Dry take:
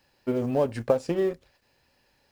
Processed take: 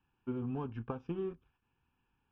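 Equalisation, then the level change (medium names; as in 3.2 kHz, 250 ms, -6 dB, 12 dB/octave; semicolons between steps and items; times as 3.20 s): elliptic low-pass 6.3 kHz; distance through air 480 m; static phaser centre 2.9 kHz, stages 8; -5.0 dB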